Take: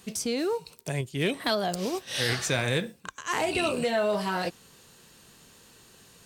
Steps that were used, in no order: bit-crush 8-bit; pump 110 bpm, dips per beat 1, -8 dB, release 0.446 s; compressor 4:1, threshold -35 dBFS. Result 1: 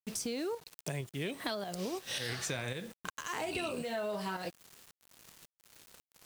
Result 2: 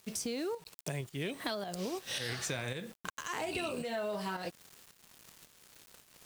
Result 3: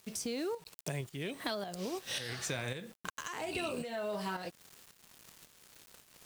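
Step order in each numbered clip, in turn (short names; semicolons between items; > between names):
pump > bit-crush > compressor; bit-crush > pump > compressor; bit-crush > compressor > pump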